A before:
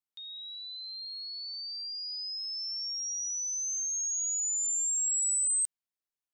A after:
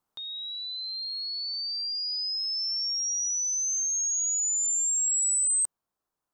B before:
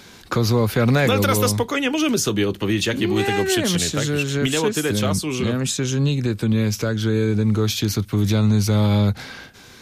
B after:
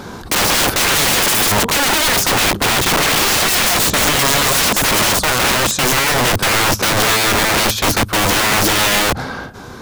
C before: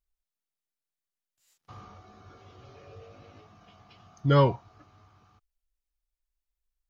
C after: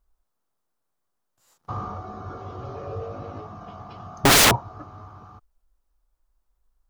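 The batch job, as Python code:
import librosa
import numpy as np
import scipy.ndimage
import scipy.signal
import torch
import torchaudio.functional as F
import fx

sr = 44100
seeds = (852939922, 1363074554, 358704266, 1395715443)

p1 = fx.high_shelf_res(x, sr, hz=1600.0, db=-10.0, q=1.5)
p2 = fx.rider(p1, sr, range_db=4, speed_s=2.0)
p3 = p1 + F.gain(torch.from_numpy(p2), 1.5).numpy()
p4 = (np.mod(10.0 ** (18.0 / 20.0) * p3 + 1.0, 2.0) - 1.0) / 10.0 ** (18.0 / 20.0)
y = F.gain(torch.from_numpy(p4), 8.5).numpy()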